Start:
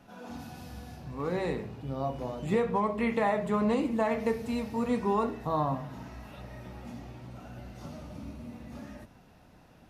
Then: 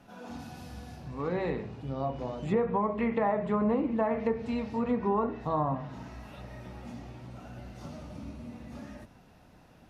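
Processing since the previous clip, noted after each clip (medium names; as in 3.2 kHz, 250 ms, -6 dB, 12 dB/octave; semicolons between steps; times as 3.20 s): low-pass that closes with the level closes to 1.5 kHz, closed at -23.5 dBFS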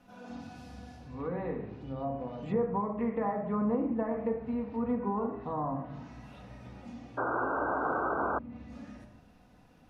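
simulated room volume 2600 m³, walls furnished, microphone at 1.9 m; painted sound noise, 7.17–8.39 s, 250–1600 Hz -25 dBFS; low-pass that closes with the level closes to 1.7 kHz, closed at -26 dBFS; trim -5.5 dB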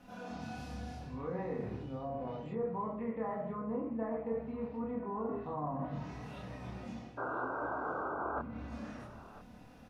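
reverse; compression 4:1, threshold -40 dBFS, peak gain reduction 13 dB; reverse; doubling 27 ms -3 dB; delay 1000 ms -18 dB; trim +2 dB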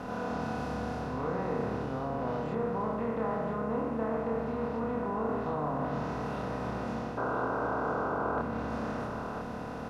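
spectral levelling over time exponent 0.4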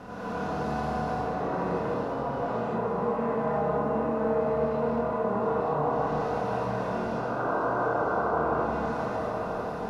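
band-passed feedback delay 158 ms, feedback 84%, band-pass 650 Hz, level -3.5 dB; flange 0.76 Hz, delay 9 ms, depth 5.4 ms, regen -46%; gated-style reverb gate 260 ms rising, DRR -5.5 dB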